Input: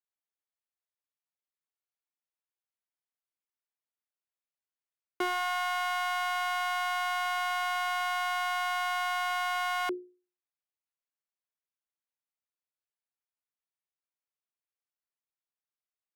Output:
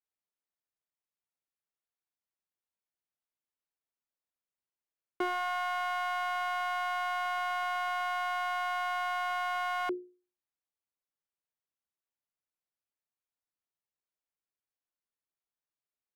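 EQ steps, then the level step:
high-shelf EQ 2,600 Hz −10 dB
0.0 dB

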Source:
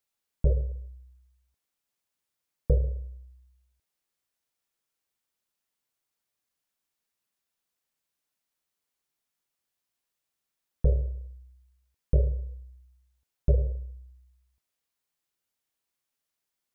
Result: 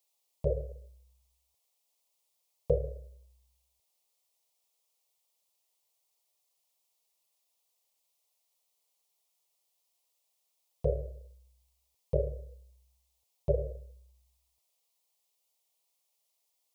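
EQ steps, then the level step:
high-pass filter 97 Hz 12 dB per octave
low-shelf EQ 250 Hz −10.5 dB
phaser with its sweep stopped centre 640 Hz, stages 4
+7.5 dB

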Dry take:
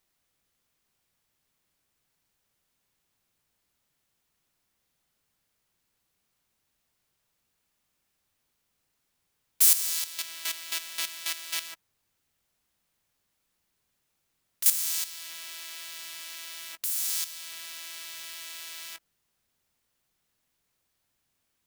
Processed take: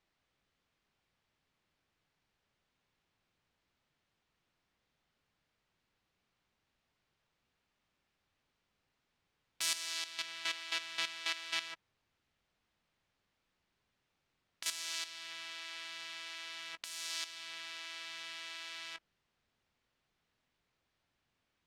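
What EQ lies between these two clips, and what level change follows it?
low-pass filter 3,800 Hz 12 dB per octave
0.0 dB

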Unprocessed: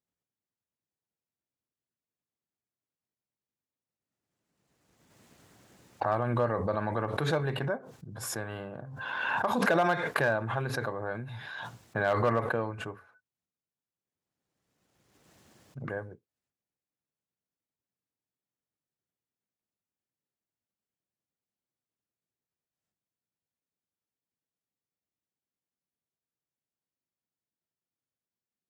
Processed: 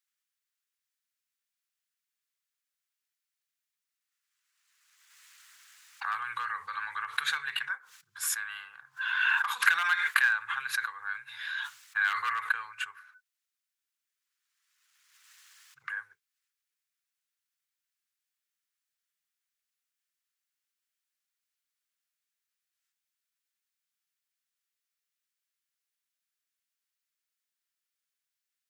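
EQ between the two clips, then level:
dynamic equaliser 5,300 Hz, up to −6 dB, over −59 dBFS, Q 2.9
inverse Chebyshev high-pass filter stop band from 670 Hz, stop band 40 dB
+7.5 dB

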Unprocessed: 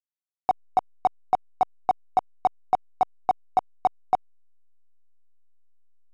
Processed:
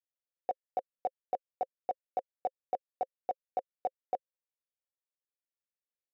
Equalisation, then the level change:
formant filter e
bass and treble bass +1 dB, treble +4 dB
parametric band 3,100 Hz −9.5 dB 1.7 octaves
+6.0 dB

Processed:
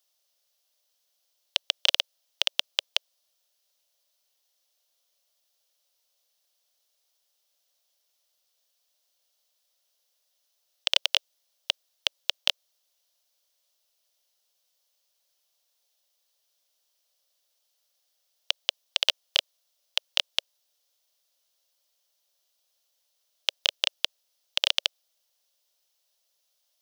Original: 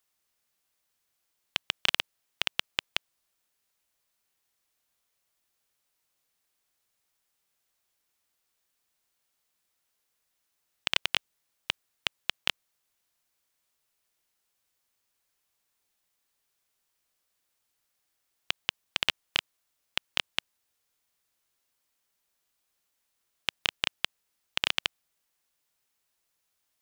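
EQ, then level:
high-pass with resonance 570 Hz, resonance Q 4.2
flat-topped bell 4,200 Hz +9.5 dB 1.3 octaves
high-shelf EQ 6,100 Hz +9.5 dB
−5.5 dB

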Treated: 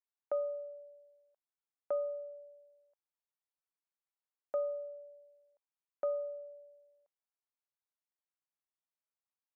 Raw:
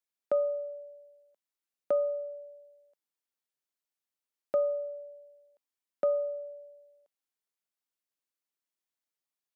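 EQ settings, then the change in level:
resonant band-pass 930 Hz, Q 1.2
−3.0 dB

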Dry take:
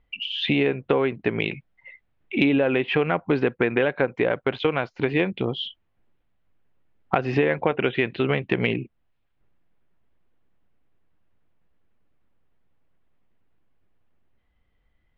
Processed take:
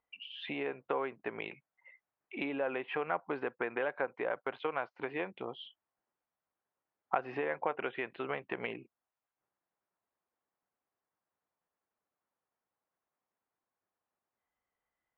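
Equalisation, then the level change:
resonant band-pass 1,000 Hz, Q 1.2
−6.5 dB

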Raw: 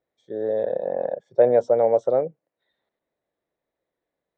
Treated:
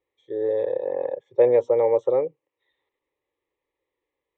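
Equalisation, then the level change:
high-frequency loss of the air 150 metres
high-shelf EQ 2,200 Hz +10.5 dB
phaser with its sweep stopped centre 1,000 Hz, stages 8
+2.5 dB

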